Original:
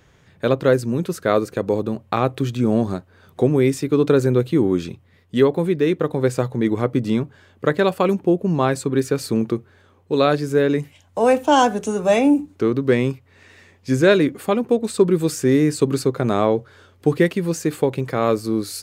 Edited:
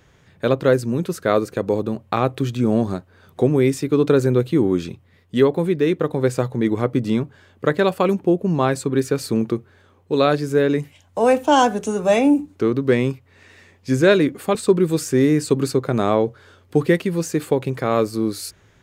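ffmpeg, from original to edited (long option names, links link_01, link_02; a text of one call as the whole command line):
ffmpeg -i in.wav -filter_complex "[0:a]asplit=2[link_01][link_02];[link_01]atrim=end=14.552[link_03];[link_02]atrim=start=14.858[link_04];[link_03][link_04]acrossfade=duration=0.004:curve1=hsin:curve2=hsin" out.wav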